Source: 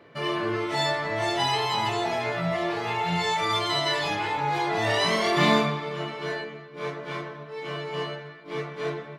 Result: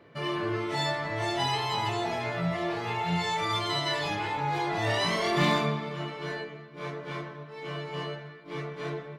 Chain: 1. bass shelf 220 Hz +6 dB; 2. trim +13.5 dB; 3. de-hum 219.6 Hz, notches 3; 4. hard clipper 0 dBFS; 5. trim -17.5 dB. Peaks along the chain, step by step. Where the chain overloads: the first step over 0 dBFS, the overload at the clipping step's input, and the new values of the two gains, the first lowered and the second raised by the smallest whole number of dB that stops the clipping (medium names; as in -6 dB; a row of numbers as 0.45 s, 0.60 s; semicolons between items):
-7.0 dBFS, +6.5 dBFS, +5.0 dBFS, 0.0 dBFS, -17.5 dBFS; step 2, 5.0 dB; step 2 +8.5 dB, step 5 -12.5 dB